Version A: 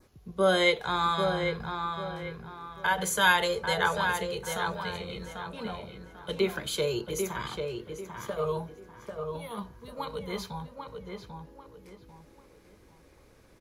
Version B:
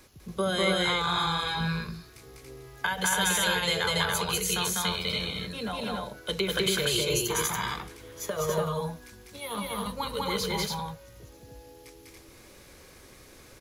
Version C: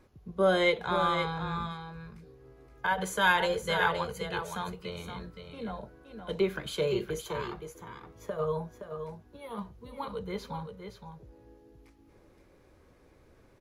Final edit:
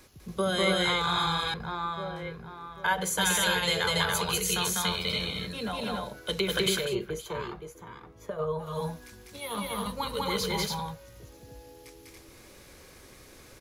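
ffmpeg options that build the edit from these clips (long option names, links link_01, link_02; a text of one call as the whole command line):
ffmpeg -i take0.wav -i take1.wav -i take2.wav -filter_complex "[1:a]asplit=3[link_01][link_02][link_03];[link_01]atrim=end=1.542[link_04];[0:a]atrim=start=1.538:end=3.182[link_05];[link_02]atrim=start=3.178:end=6.96[link_06];[2:a]atrim=start=6.72:end=8.82[link_07];[link_03]atrim=start=8.58[link_08];[link_04][link_05]acrossfade=duration=0.004:curve1=hsin:curve2=hsin[link_09];[link_09][link_06]acrossfade=duration=0.004:curve1=hsin:curve2=hsin[link_10];[link_10][link_07]acrossfade=duration=0.24:curve1=tri:curve2=tri[link_11];[link_11][link_08]acrossfade=duration=0.24:curve1=tri:curve2=tri" out.wav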